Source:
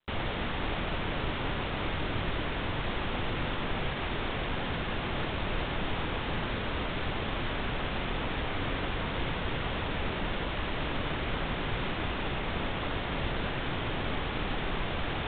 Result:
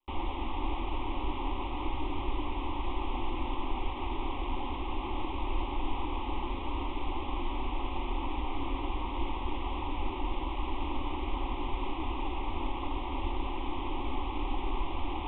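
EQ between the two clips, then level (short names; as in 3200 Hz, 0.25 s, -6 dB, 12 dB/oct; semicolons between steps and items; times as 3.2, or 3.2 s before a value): high shelf 2800 Hz -9.5 dB; fixed phaser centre 460 Hz, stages 6; fixed phaser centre 960 Hz, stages 8; +5.0 dB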